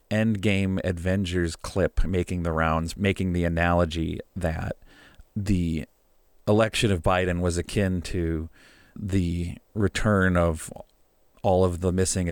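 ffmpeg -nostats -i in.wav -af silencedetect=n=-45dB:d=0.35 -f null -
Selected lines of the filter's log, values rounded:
silence_start: 5.85
silence_end: 6.48 | silence_duration: 0.63
silence_start: 10.82
silence_end: 11.37 | silence_duration: 0.55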